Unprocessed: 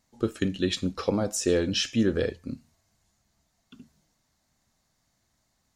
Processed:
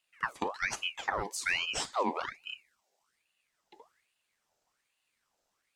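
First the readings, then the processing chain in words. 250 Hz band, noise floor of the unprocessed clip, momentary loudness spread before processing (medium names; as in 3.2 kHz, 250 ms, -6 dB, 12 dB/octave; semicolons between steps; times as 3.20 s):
-17.5 dB, -74 dBFS, 11 LU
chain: spectral selection erased 1.22–3.14 s, 460–980 Hz; ring modulator with a swept carrier 1.7 kHz, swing 65%, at 1.2 Hz; trim -4.5 dB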